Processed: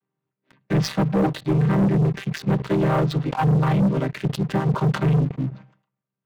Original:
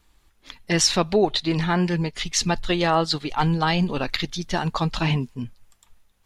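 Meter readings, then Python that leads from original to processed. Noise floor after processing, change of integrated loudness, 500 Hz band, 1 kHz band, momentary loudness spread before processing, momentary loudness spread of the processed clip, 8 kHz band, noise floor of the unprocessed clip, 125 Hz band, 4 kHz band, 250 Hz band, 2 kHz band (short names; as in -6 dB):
-85 dBFS, +1.0 dB, 0.0 dB, -2.5 dB, 7 LU, 7 LU, under -10 dB, -62 dBFS, +6.0 dB, -11.5 dB, +3.5 dB, -5.0 dB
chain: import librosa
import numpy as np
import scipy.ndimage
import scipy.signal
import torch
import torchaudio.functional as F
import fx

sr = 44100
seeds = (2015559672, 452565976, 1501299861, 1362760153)

y = fx.chord_vocoder(x, sr, chord='minor triad', root=48)
y = scipy.signal.sosfilt(scipy.signal.butter(2, 2400.0, 'lowpass', fs=sr, output='sos'), y)
y = fx.leveller(y, sr, passes=3)
y = fx.sustainer(y, sr, db_per_s=140.0)
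y = F.gain(torch.from_numpy(y), -3.5).numpy()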